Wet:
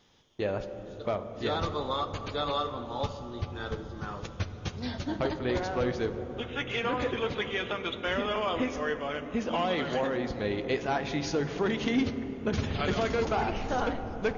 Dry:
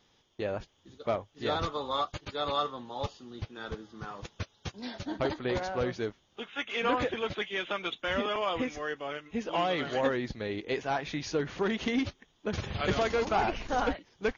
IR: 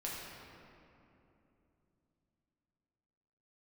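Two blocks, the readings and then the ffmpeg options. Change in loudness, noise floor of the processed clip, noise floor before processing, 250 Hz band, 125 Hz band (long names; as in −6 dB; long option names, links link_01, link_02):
+1.0 dB, −43 dBFS, −68 dBFS, +3.0 dB, +4.5 dB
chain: -filter_complex "[0:a]alimiter=limit=-22.5dB:level=0:latency=1:release=315,asplit=2[link_01][link_02];[1:a]atrim=start_sample=2205,asetrate=22932,aresample=44100,lowshelf=frequency=450:gain=7.5[link_03];[link_02][link_03]afir=irnorm=-1:irlink=0,volume=-14dB[link_04];[link_01][link_04]amix=inputs=2:normalize=0,volume=1dB"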